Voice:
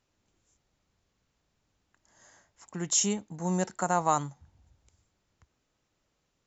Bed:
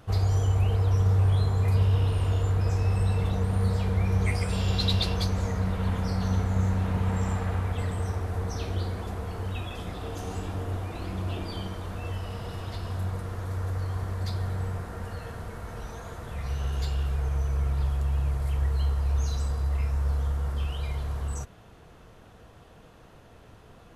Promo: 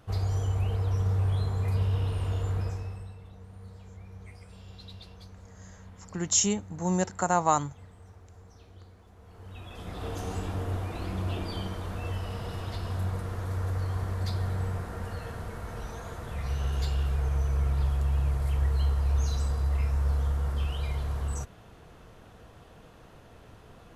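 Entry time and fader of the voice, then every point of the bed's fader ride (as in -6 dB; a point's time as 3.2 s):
3.40 s, +2.0 dB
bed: 2.6 s -4.5 dB
3.19 s -21.5 dB
9.11 s -21.5 dB
10.05 s 0 dB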